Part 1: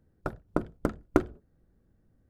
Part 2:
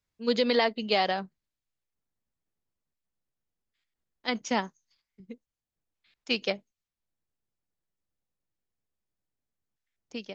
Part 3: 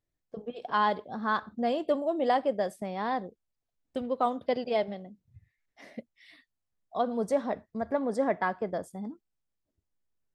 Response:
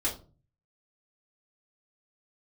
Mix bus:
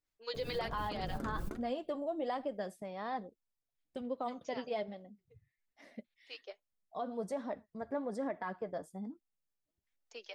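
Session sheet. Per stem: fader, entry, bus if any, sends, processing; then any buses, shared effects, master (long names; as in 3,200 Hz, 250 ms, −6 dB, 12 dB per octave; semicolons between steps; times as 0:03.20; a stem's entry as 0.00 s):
−7.5 dB, 0.35 s, no send, high-shelf EQ 3,800 Hz +9 dB; background raised ahead of every attack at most 31 dB per second
+2.0 dB, 0.00 s, no send, two-band tremolo in antiphase 5.1 Hz, depth 70%, crossover 810 Hz; inverse Chebyshev high-pass filter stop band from 160 Hz, stop band 50 dB; automatic ducking −14 dB, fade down 1.45 s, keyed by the third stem
−4.0 dB, 0.00 s, no send, no processing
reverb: not used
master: flanger 1.2 Hz, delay 3.1 ms, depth 4.5 ms, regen +44%; brickwall limiter −28 dBFS, peak gain reduction 12.5 dB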